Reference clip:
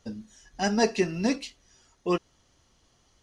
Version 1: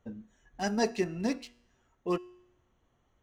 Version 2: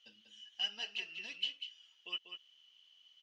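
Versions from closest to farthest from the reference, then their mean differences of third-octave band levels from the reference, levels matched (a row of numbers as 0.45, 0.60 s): 1, 2; 2.5, 9.5 dB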